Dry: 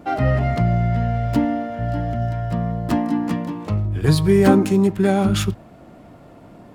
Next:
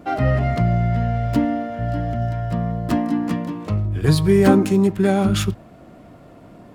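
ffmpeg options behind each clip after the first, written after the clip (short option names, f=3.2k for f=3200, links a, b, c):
-af "bandreject=f=860:w=12"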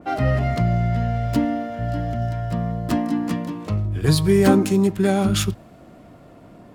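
-af "adynamicequalizer=threshold=0.00891:dfrequency=3200:dqfactor=0.7:tfrequency=3200:tqfactor=0.7:attack=5:release=100:ratio=0.375:range=2.5:mode=boostabove:tftype=highshelf,volume=-1.5dB"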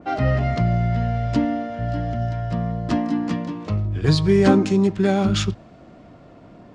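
-af "lowpass=f=6.5k:w=0.5412,lowpass=f=6.5k:w=1.3066"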